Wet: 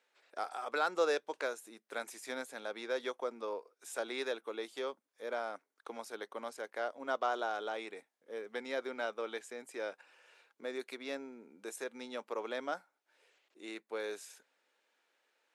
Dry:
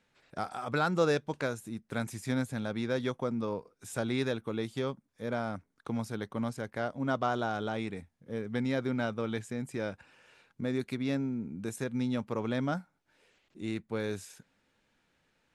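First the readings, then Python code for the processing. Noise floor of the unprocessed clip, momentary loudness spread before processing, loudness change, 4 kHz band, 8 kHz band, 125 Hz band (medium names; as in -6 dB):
-75 dBFS, 9 LU, -5.5 dB, -2.5 dB, -2.5 dB, under -35 dB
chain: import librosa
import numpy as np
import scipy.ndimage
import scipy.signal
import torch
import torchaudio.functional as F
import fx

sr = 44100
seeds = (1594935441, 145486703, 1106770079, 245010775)

y = scipy.signal.sosfilt(scipy.signal.butter(4, 390.0, 'highpass', fs=sr, output='sos'), x)
y = y * librosa.db_to_amplitude(-2.5)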